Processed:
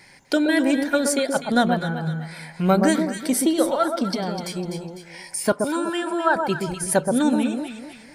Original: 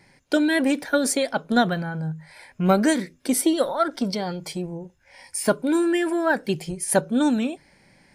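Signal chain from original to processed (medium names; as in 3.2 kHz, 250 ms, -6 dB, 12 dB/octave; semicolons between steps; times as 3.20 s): 5.52–6.36 s: cabinet simulation 320–9700 Hz, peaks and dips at 400 Hz -9 dB, 900 Hz +5 dB, 1.3 kHz +8 dB, 2 kHz -10 dB, 3.2 kHz +3 dB, 6.1 kHz -5 dB; echo whose repeats swap between lows and highs 125 ms, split 1.2 kHz, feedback 53%, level -4 dB; tape noise reduction on one side only encoder only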